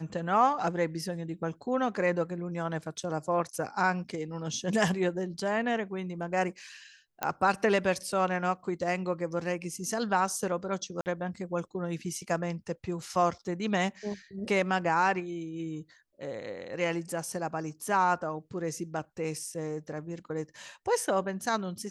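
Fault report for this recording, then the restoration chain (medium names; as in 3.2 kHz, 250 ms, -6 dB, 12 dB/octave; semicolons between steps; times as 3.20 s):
7.23 s: pop -14 dBFS
11.01–11.06 s: dropout 49 ms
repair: de-click; interpolate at 11.01 s, 49 ms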